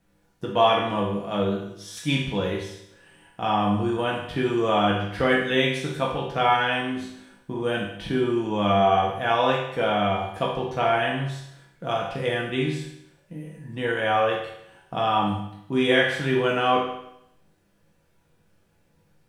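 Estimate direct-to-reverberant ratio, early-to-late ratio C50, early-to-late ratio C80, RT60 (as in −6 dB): −4.0 dB, 3.0 dB, 6.5 dB, 0.75 s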